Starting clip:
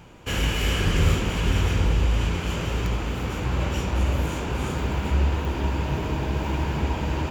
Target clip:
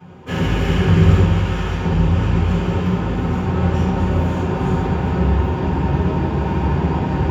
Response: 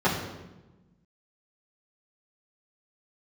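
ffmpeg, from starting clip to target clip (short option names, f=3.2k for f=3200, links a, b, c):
-filter_complex "[0:a]asettb=1/sr,asplit=3[a][b][c];[a]atrim=end=1.264[d];[b]atrim=start=1.26:end=1.84,asetpts=PTS-STARTPTS,afade=t=in:d=0.004:c=qsin,afade=t=out:st=0.576:d=0.004:c=qsin,lowshelf=f=380:g=-11[e];[c]atrim=start=1.836[f];[d][e]acrossfade=d=0.004:c1=hsin:c2=qsin[g];[g][f]acrossfade=d=0.004:c1=qsin:c2=hsin[h];[1:a]atrim=start_sample=2205[i];[h][i]afir=irnorm=-1:irlink=0,volume=-11.5dB"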